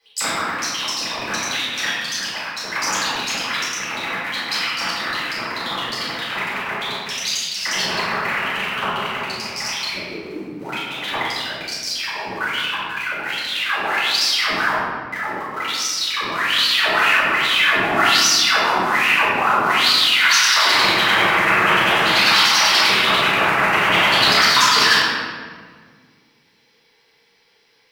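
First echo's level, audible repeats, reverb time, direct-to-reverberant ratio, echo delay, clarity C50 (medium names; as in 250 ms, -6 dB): no echo, no echo, 1.7 s, -13.5 dB, no echo, -3.5 dB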